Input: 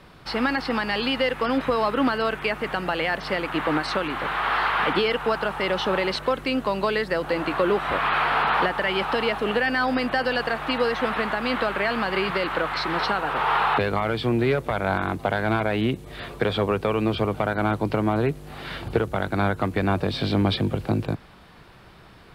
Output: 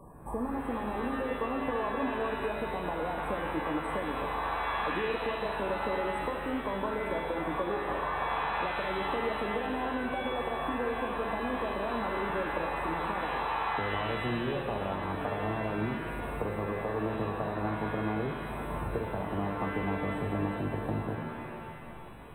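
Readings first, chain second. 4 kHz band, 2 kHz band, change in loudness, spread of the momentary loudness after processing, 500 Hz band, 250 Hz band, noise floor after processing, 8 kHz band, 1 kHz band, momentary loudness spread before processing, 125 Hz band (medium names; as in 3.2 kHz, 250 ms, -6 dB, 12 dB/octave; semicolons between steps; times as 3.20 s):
-14.5 dB, -10.5 dB, -9.0 dB, 3 LU, -8.5 dB, -8.5 dB, -41 dBFS, no reading, -7.5 dB, 4 LU, -9.0 dB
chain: FFT band-reject 1.2–7.7 kHz; compression 4:1, threshold -32 dBFS, peak gain reduction 13 dB; pitch-shifted reverb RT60 2 s, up +7 st, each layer -2 dB, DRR 3 dB; trim -1.5 dB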